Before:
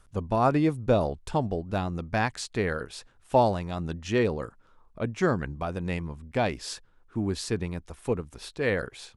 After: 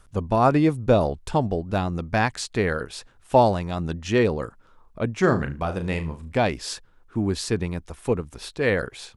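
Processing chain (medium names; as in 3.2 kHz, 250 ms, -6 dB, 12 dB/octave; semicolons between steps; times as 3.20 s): 5.20–6.33 s: flutter echo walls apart 6.3 m, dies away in 0.26 s; trim +4.5 dB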